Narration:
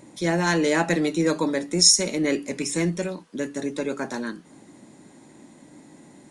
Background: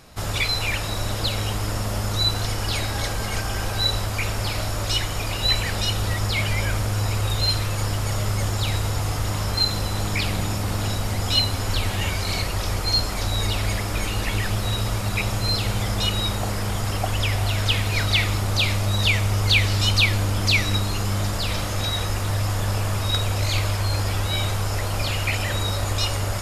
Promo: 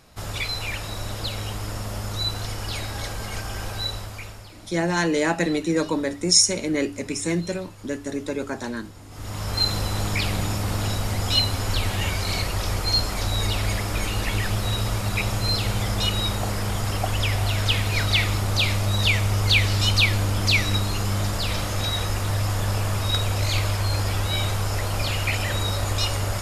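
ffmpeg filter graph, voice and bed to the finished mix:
-filter_complex "[0:a]adelay=4500,volume=0.944[s0];[1:a]volume=5.62,afade=t=out:st=3.7:d=0.81:silence=0.16788,afade=t=in:st=9.09:d=0.57:silence=0.1[s1];[s0][s1]amix=inputs=2:normalize=0"

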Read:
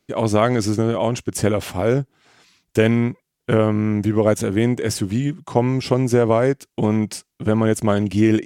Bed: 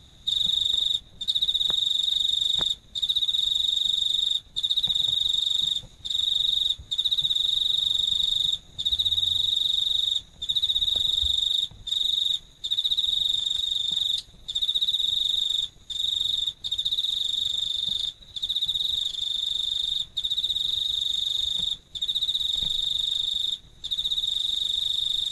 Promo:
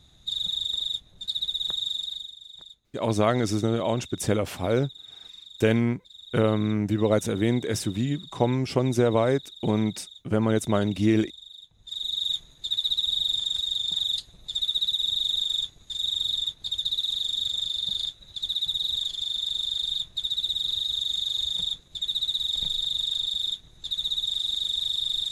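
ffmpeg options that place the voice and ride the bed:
-filter_complex "[0:a]adelay=2850,volume=0.531[s0];[1:a]volume=5.62,afade=t=out:st=1.9:d=0.44:silence=0.149624,afade=t=in:st=11.67:d=0.71:silence=0.1[s1];[s0][s1]amix=inputs=2:normalize=0"

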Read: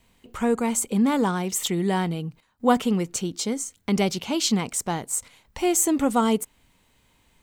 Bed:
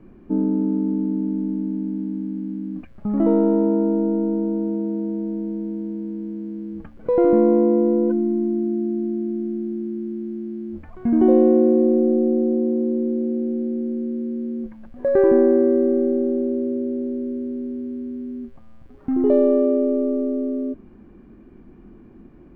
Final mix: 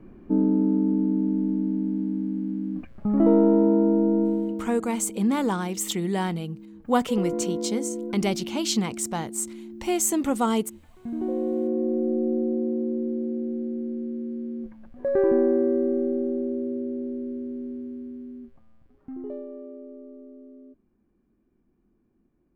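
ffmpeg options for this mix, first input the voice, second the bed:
-filter_complex "[0:a]adelay=4250,volume=0.75[s0];[1:a]volume=2.37,afade=t=out:st=4.23:d=0.46:silence=0.223872,afade=t=in:st=11.34:d=0.99:silence=0.398107,afade=t=out:st=17.71:d=1.75:silence=0.141254[s1];[s0][s1]amix=inputs=2:normalize=0"

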